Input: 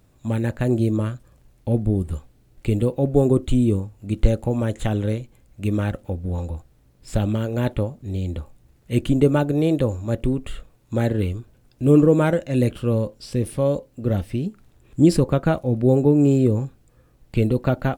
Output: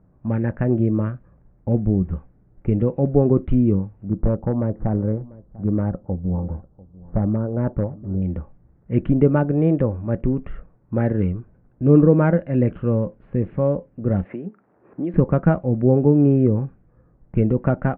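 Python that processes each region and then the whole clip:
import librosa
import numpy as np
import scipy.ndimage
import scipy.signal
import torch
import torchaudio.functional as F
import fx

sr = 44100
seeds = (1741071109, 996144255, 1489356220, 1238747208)

y = fx.chain(x, sr, fx.lowpass(hz=1200.0, slope=24),
    fx.clip_hard(threshold_db=-13.5),
    fx.echo_single(ms=694, db=-21.0), at=(4.08, 8.22))
y = fx.chain(y, sr, fx.highpass(hz=370.0, slope=12),
    fx.band_squash(depth_pct=70), at=(14.25, 15.14))
y = fx.env_lowpass(y, sr, base_hz=1200.0, full_db=-14.0)
y = scipy.signal.sosfilt(scipy.signal.cheby2(4, 50, 5000.0, 'lowpass', fs=sr, output='sos'), y)
y = fx.peak_eq(y, sr, hz=180.0, db=8.5, octaves=0.35)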